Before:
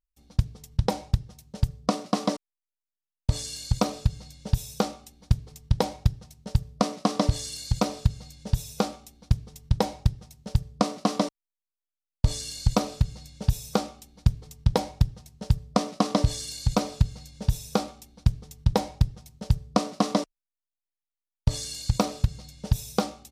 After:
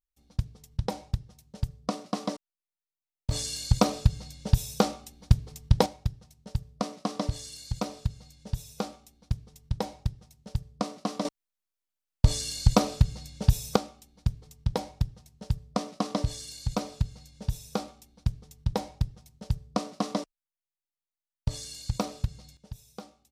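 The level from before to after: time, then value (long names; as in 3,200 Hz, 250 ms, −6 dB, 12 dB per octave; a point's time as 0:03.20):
−6 dB
from 0:03.31 +2 dB
from 0:05.86 −7 dB
from 0:11.25 +2 dB
from 0:13.76 −6 dB
from 0:22.57 −18 dB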